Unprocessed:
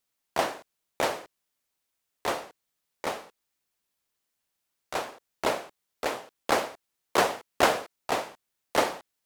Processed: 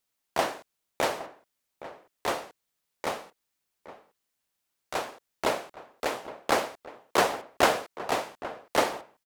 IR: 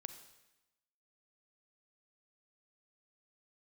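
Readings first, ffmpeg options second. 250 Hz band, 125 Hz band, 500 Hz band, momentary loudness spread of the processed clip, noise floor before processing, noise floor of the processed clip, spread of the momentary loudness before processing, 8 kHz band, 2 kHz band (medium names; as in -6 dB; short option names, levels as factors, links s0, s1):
0.0 dB, 0.0 dB, 0.0 dB, 20 LU, -82 dBFS, -81 dBFS, 15 LU, 0.0 dB, 0.0 dB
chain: -filter_complex "[0:a]asplit=2[s0][s1];[s1]adelay=816.3,volume=0.2,highshelf=f=4000:g=-18.4[s2];[s0][s2]amix=inputs=2:normalize=0"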